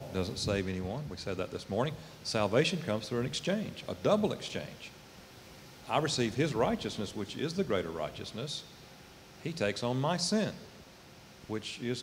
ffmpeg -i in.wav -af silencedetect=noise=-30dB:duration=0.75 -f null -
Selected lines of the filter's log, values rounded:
silence_start: 4.61
silence_end: 5.90 | silence_duration: 1.29
silence_start: 8.55
silence_end: 9.46 | silence_duration: 0.90
silence_start: 10.50
silence_end: 11.50 | silence_duration: 1.00